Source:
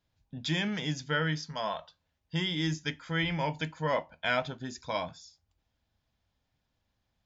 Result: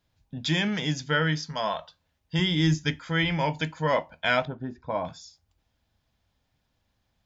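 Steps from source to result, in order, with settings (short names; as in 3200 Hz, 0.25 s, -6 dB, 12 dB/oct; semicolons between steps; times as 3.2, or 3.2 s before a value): 2.39–2.99 low shelf 160 Hz +9.5 dB; 4.45–5.05 LPF 1100 Hz 12 dB/oct; gain +5 dB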